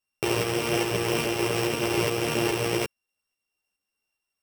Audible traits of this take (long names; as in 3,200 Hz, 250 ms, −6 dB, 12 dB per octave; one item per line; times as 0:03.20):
a buzz of ramps at a fixed pitch in blocks of 16 samples
tremolo saw up 2.4 Hz, depth 35%
a shimmering, thickened sound